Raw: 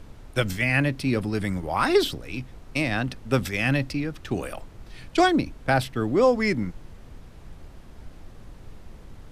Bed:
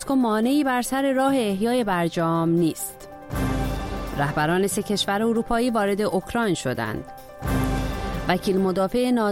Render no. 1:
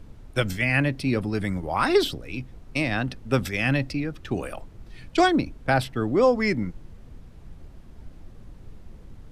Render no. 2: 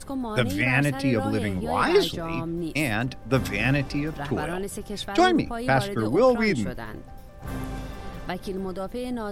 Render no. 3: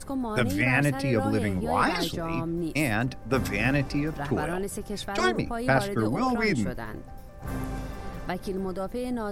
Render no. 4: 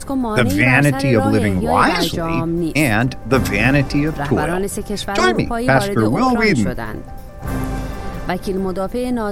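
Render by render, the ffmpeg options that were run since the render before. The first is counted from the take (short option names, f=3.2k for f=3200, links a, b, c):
-af "afftdn=nr=6:nf=-46"
-filter_complex "[1:a]volume=-10dB[a];[0:a][a]amix=inputs=2:normalize=0"
-af "equalizer=f=3.3k:t=o:w=0.66:g=-5.5,afftfilt=real='re*lt(hypot(re,im),0.794)':imag='im*lt(hypot(re,im),0.794)':win_size=1024:overlap=0.75"
-af "volume=10.5dB,alimiter=limit=-1dB:level=0:latency=1"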